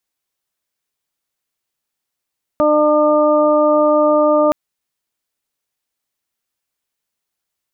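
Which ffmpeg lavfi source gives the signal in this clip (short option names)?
-f lavfi -i "aevalsrc='0.141*sin(2*PI*301*t)+0.266*sin(2*PI*602*t)+0.075*sin(2*PI*903*t)+0.119*sin(2*PI*1204*t)':d=1.92:s=44100"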